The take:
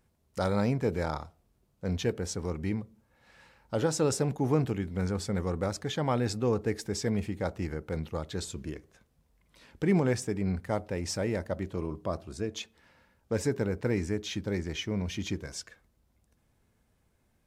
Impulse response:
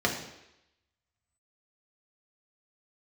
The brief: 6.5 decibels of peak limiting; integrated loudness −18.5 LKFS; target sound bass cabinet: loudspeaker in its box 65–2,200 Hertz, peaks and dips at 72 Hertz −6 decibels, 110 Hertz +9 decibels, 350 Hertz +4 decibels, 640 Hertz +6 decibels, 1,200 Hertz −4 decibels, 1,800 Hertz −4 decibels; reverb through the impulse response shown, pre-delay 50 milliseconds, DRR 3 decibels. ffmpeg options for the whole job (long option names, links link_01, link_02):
-filter_complex "[0:a]alimiter=limit=-22dB:level=0:latency=1,asplit=2[link_01][link_02];[1:a]atrim=start_sample=2205,adelay=50[link_03];[link_02][link_03]afir=irnorm=-1:irlink=0,volume=-15dB[link_04];[link_01][link_04]amix=inputs=2:normalize=0,highpass=frequency=65:width=0.5412,highpass=frequency=65:width=1.3066,equalizer=frequency=72:width_type=q:width=4:gain=-6,equalizer=frequency=110:width_type=q:width=4:gain=9,equalizer=frequency=350:width_type=q:width=4:gain=4,equalizer=frequency=640:width_type=q:width=4:gain=6,equalizer=frequency=1200:width_type=q:width=4:gain=-4,equalizer=frequency=1800:width_type=q:width=4:gain=-4,lowpass=frequency=2200:width=0.5412,lowpass=frequency=2200:width=1.3066,volume=10.5dB"